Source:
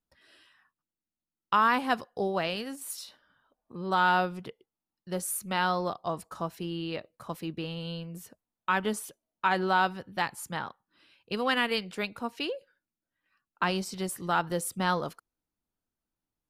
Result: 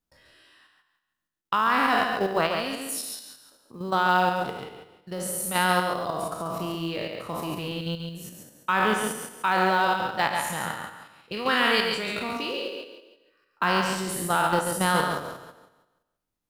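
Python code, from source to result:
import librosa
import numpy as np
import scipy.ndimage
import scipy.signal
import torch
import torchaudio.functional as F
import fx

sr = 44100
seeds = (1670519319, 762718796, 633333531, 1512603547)

p1 = fx.spec_trails(x, sr, decay_s=1.08)
p2 = fx.level_steps(p1, sr, step_db=9)
p3 = p2 + fx.echo_single(p2, sr, ms=138, db=-5.5, dry=0)
p4 = fx.quant_float(p3, sr, bits=4)
y = p4 * librosa.db_to_amplitude(4.5)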